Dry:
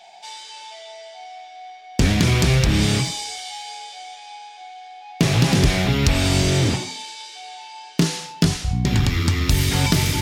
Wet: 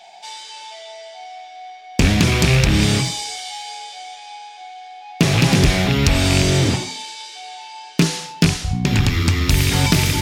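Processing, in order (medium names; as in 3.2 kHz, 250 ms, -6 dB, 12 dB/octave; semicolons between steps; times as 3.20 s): rattle on loud lows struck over -13 dBFS, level -11 dBFS; hum notches 60/120 Hz; trim +2.5 dB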